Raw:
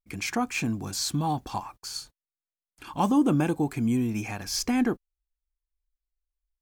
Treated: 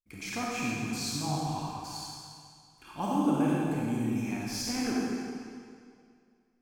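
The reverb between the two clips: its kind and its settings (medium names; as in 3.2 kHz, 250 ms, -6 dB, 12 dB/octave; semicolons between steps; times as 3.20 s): algorithmic reverb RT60 2.2 s, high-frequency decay 0.95×, pre-delay 10 ms, DRR -5.5 dB; trim -10 dB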